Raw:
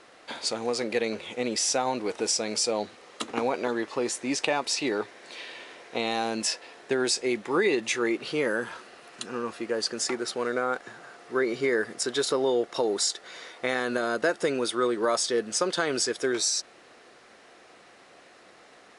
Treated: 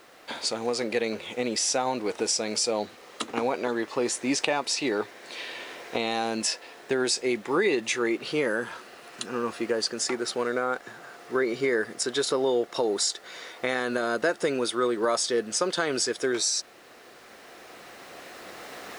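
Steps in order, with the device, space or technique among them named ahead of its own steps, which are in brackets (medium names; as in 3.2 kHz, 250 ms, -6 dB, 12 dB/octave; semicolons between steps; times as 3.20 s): cheap recorder with automatic gain (white noise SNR 38 dB; recorder AGC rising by 5.2 dB/s)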